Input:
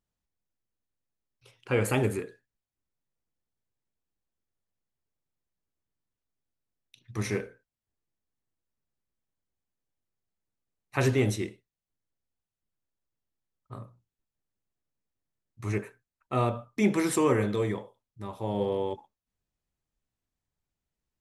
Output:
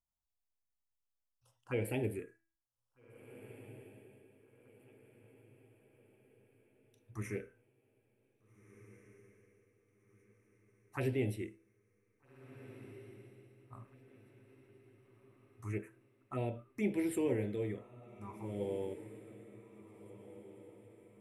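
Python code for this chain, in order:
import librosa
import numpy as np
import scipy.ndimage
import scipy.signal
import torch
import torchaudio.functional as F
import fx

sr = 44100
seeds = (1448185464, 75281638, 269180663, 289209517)

y = fx.graphic_eq_15(x, sr, hz=(160, 1600, 4000), db=(-7, -4, -11))
y = fx.env_phaser(y, sr, low_hz=380.0, high_hz=1200.0, full_db=-25.0)
y = fx.comb_fb(y, sr, f0_hz=330.0, decay_s=0.48, harmonics='all', damping=0.0, mix_pct=50)
y = fx.echo_diffused(y, sr, ms=1695, feedback_pct=43, wet_db=-15)
y = y * librosa.db_to_amplitude(-1.0)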